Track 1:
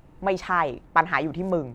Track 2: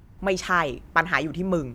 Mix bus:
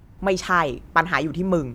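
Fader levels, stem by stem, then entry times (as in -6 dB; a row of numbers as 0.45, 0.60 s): -8.5, +1.5 dB; 0.00, 0.00 s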